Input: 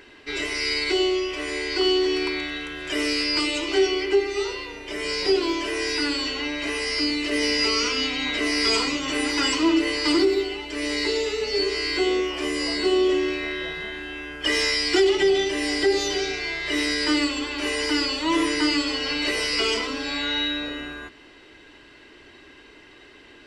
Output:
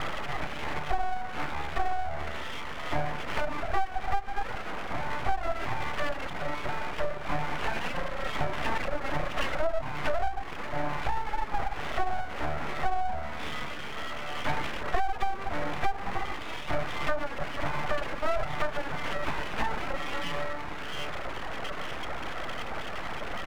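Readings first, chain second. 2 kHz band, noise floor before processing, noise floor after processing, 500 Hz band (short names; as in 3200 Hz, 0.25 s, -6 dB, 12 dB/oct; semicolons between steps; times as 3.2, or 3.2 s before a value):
-8.0 dB, -49 dBFS, -35 dBFS, -11.0 dB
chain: delta modulation 32 kbps, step -25 dBFS; steep low-pass 1800 Hz 96 dB/oct; echo 0.124 s -14 dB; compressor 6:1, threshold -25 dBFS, peak gain reduction 9.5 dB; reverb removal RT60 1.4 s; HPF 73 Hz 24 dB/oct; full-wave rectifier; gain +5 dB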